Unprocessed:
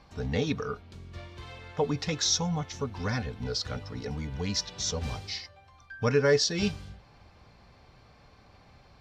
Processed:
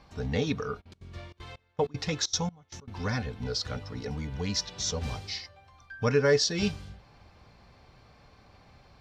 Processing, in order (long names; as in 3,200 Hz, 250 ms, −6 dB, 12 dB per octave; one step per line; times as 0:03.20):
0:00.80–0:03.03: gate pattern ".xxxx.xx...x" 193 BPM −24 dB